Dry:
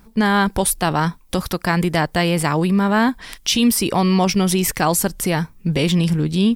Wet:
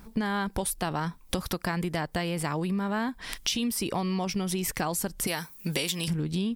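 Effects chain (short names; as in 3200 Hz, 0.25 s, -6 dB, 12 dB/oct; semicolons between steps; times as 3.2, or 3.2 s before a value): 5.27–6.08 RIAA curve recording; compressor 10:1, threshold -26 dBFS, peak gain reduction 14.5 dB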